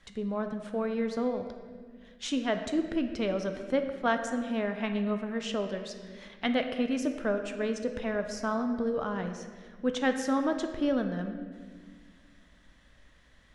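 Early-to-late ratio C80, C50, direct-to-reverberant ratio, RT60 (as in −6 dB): 9.0 dB, 7.5 dB, 6.0 dB, 1.7 s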